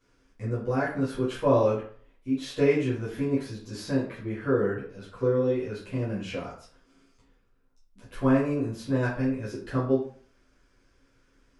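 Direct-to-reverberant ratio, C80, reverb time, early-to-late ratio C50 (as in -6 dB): -10.5 dB, 9.5 dB, 0.50 s, 5.5 dB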